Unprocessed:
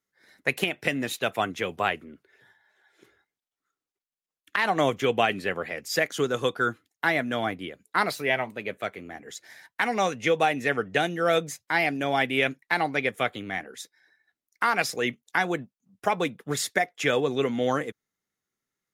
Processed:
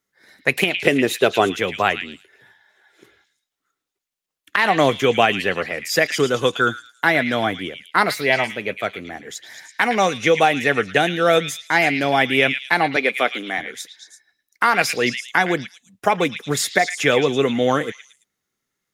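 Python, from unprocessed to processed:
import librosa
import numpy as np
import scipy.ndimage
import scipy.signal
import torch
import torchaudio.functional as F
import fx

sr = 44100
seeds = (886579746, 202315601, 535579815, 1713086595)

p1 = fx.peak_eq(x, sr, hz=400.0, db=12.5, octaves=0.61, at=(0.83, 1.6))
p2 = fx.highpass(p1, sr, hz=230.0, slope=24, at=(12.96, 13.58))
p3 = p2 + fx.echo_stepped(p2, sr, ms=111, hz=2800.0, octaves=0.7, feedback_pct=70, wet_db=-4.5, dry=0)
y = p3 * librosa.db_to_amplitude(7.0)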